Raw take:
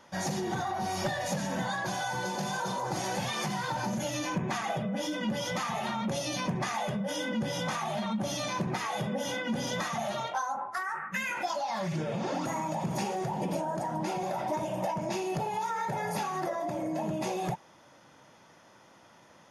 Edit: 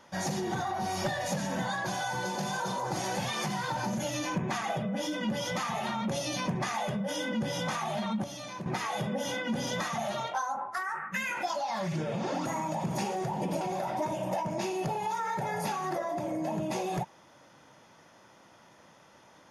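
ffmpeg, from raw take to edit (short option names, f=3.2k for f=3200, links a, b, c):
-filter_complex "[0:a]asplit=4[a][b][c][d];[a]atrim=end=8.242[e];[b]atrim=start=8.238:end=8.662,asetpts=PTS-STARTPTS,volume=-8dB[f];[c]atrim=start=8.658:end=13.612[g];[d]atrim=start=14.118[h];[e][f]acrossfade=d=0.004:c1=hsin:c2=hsin[i];[i][g]acrossfade=d=0.004:c1=hsin:c2=hsin[j];[j][h]acrossfade=d=0.004:c1=hsin:c2=hsin"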